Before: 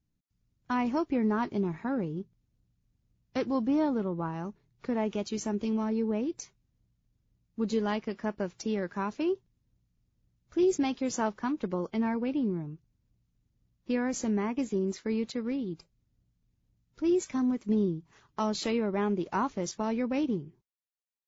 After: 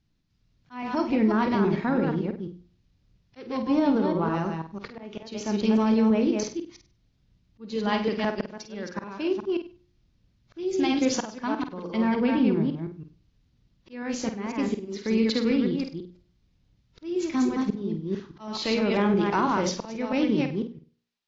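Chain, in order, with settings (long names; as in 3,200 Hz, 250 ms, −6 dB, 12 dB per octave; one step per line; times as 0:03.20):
delay that plays each chunk backwards 165 ms, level −5 dB
low-pass filter 4,900 Hz 24 dB per octave
high-shelf EQ 2,800 Hz +8.5 dB
hum removal 59.15 Hz, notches 9
volume swells 556 ms
brickwall limiter −22.5 dBFS, peak gain reduction 6.5 dB
flutter between parallel walls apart 8.5 metres, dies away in 0.33 s
level +7.5 dB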